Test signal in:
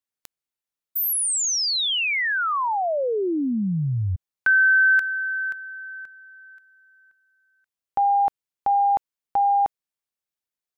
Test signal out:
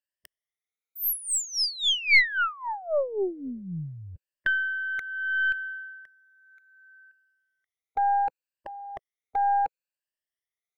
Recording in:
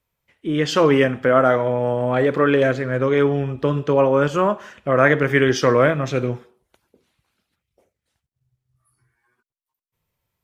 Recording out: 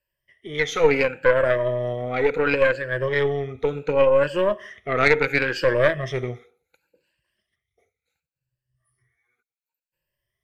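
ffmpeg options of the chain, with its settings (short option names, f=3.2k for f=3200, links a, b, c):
-af "afftfilt=real='re*pow(10,18/40*sin(2*PI*(1.3*log(max(b,1)*sr/1024/100)/log(2)-(0.7)*(pts-256)/sr)))':imag='im*pow(10,18/40*sin(2*PI*(1.3*log(max(b,1)*sr/1024/100)/log(2)-(0.7)*(pts-256)/sr)))':win_size=1024:overlap=0.75,equalizer=f=250:t=o:w=1:g=-7,equalizer=f=500:t=o:w=1:g=7,equalizer=f=1k:t=o:w=1:g=-8,equalizer=f=2k:t=o:w=1:g=11,aeval=exprs='(tanh(0.891*val(0)+0.8)-tanh(0.8))/0.891':c=same,volume=-5dB"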